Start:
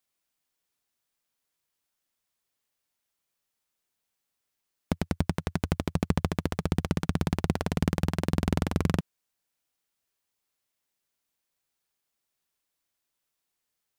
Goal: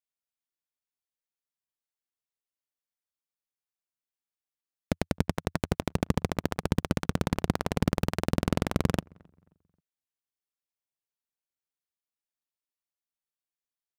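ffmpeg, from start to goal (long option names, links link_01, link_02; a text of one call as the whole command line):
ffmpeg -i in.wav -filter_complex "[0:a]asplit=2[link_01][link_02];[link_02]adelay=266,lowpass=frequency=2000:poles=1,volume=-16dB,asplit=2[link_03][link_04];[link_04]adelay=266,lowpass=frequency=2000:poles=1,volume=0.39,asplit=2[link_05][link_06];[link_06]adelay=266,lowpass=frequency=2000:poles=1,volume=0.39[link_07];[link_01][link_03][link_05][link_07]amix=inputs=4:normalize=0,aeval=exprs='0.376*(cos(1*acos(clip(val(0)/0.376,-1,1)))-cos(1*PI/2))+0.0119*(cos(5*acos(clip(val(0)/0.376,-1,1)))-cos(5*PI/2))+0.0531*(cos(7*acos(clip(val(0)/0.376,-1,1)))-cos(7*PI/2))':channel_layout=same" out.wav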